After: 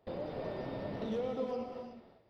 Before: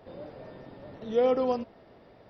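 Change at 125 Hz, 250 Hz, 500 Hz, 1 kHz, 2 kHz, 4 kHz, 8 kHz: +3.0 dB, -4.5 dB, -9.0 dB, -9.0 dB, -3.5 dB, -5.0 dB, n/a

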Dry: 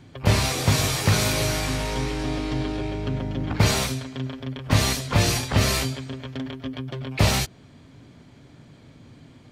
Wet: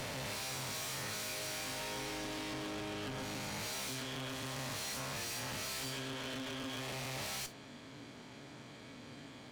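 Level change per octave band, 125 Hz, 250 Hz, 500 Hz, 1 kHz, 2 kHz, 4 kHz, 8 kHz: -23.5, -17.0, -15.5, -14.0, -13.0, -13.0, -12.5 dB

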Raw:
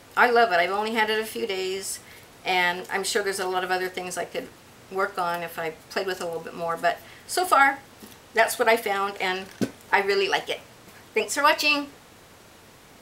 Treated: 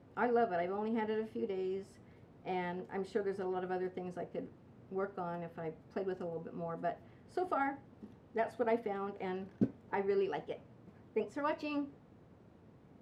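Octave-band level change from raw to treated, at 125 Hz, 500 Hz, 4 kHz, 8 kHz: -3.5 dB, -10.5 dB, -27.5 dB, under -35 dB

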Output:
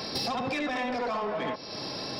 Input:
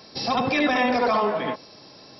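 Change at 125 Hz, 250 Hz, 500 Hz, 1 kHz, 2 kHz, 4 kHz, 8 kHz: -4.5 dB, -8.0 dB, -7.5 dB, -8.5 dB, -8.5 dB, -2.5 dB, n/a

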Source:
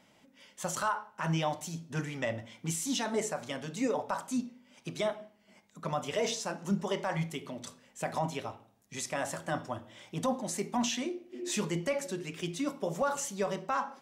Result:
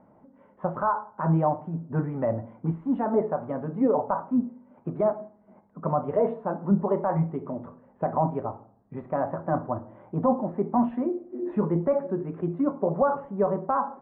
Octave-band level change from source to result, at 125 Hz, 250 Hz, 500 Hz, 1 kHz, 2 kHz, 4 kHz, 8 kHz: +8.5 dB, +8.5 dB, +8.5 dB, +7.5 dB, -5.5 dB, under -30 dB, under -40 dB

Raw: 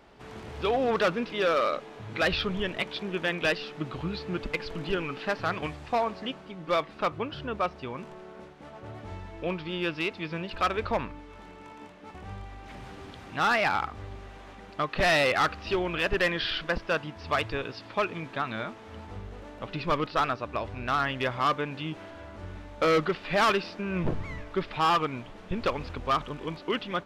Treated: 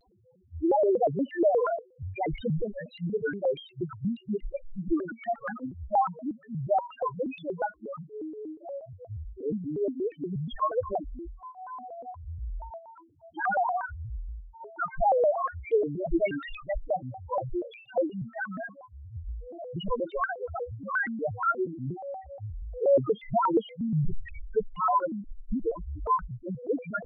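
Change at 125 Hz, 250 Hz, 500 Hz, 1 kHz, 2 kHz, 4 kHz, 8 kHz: +0.5 dB, +1.5 dB, +1.5 dB, -0.5 dB, -7.0 dB, -17.5 dB, under -30 dB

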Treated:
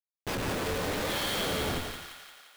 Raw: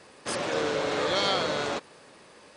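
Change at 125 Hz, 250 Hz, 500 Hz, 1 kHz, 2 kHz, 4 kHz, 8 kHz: +5.0, -0.5, -5.5, -4.5, -2.5, -3.0, +0.5 dB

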